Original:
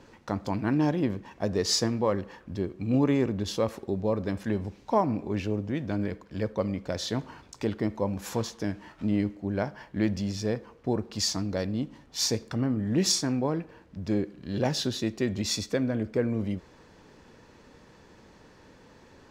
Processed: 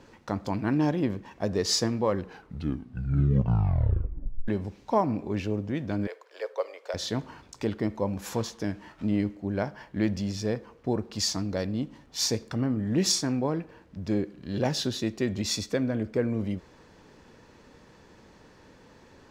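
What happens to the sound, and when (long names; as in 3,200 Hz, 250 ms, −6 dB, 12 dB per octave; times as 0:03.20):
0:02.11: tape stop 2.37 s
0:06.07–0:06.94: Butterworth high-pass 430 Hz 48 dB per octave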